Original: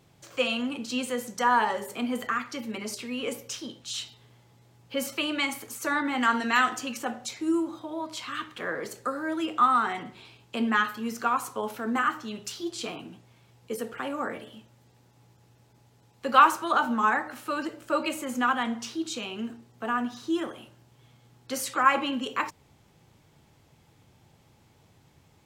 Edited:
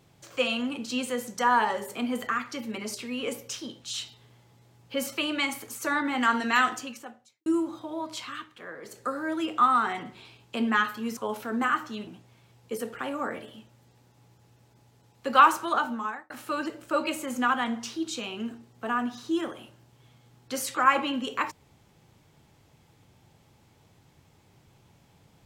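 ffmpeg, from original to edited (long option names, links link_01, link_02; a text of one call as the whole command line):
ffmpeg -i in.wav -filter_complex "[0:a]asplit=7[link_01][link_02][link_03][link_04][link_05][link_06][link_07];[link_01]atrim=end=7.46,asetpts=PTS-STARTPTS,afade=type=out:start_time=6.7:duration=0.76:curve=qua[link_08];[link_02]atrim=start=7.46:end=8.49,asetpts=PTS-STARTPTS,afade=type=in:duration=0.004:curve=hsin,afade=type=out:start_time=0.73:duration=0.3:silence=0.334965[link_09];[link_03]atrim=start=8.49:end=8.81,asetpts=PTS-STARTPTS,volume=-9.5dB[link_10];[link_04]atrim=start=8.81:end=11.172,asetpts=PTS-STARTPTS,afade=type=in:duration=0.3:silence=0.334965[link_11];[link_05]atrim=start=11.508:end=12.412[link_12];[link_06]atrim=start=13.058:end=17.29,asetpts=PTS-STARTPTS,afade=type=out:start_time=3.572:duration=0.66[link_13];[link_07]atrim=start=17.29,asetpts=PTS-STARTPTS,afade=type=in:duration=0.004:curve=hsin[link_14];[link_08][link_09][link_10][link_11]concat=n=4:v=0:a=1[link_15];[link_15][link_12]acrossfade=duration=0.004:curve1=hsin:curve2=hsin[link_16];[link_13][link_14]concat=n=2:v=0:a=1[link_17];[link_16][link_17]acrossfade=duration=0.004:curve1=hsin:curve2=hsin" out.wav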